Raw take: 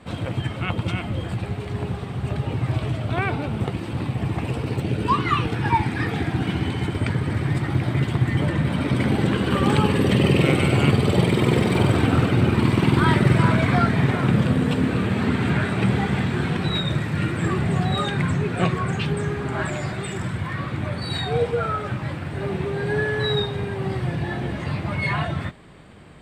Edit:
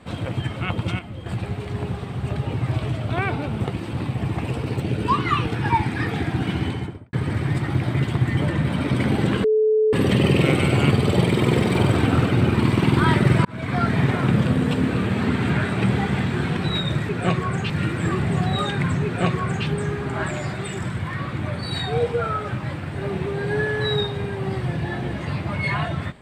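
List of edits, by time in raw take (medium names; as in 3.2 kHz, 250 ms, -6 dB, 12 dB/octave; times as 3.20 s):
0.99–1.26 s: gain -8 dB
6.64–7.13 s: studio fade out
9.44–9.93 s: bleep 433 Hz -14.5 dBFS
13.45–13.94 s: fade in
18.44–19.05 s: copy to 17.09 s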